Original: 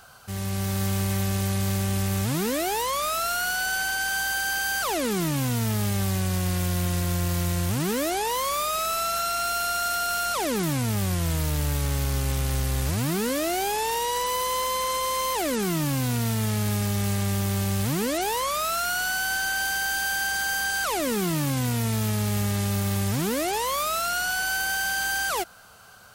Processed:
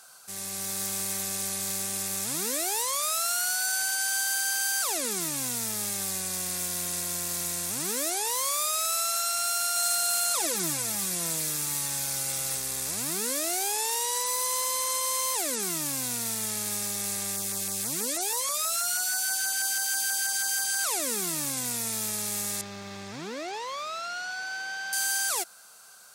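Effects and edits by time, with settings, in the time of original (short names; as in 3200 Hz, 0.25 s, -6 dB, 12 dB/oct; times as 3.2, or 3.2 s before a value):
9.76–12.57 comb 6 ms
17.36–20.79 LFO notch saw down 6.2 Hz 530–3800 Hz
22.61–24.93 air absorption 210 m
whole clip: Bessel high-pass 300 Hz, order 2; bell 8700 Hz +14 dB 2 oct; notch 3000 Hz, Q 11; gain -7.5 dB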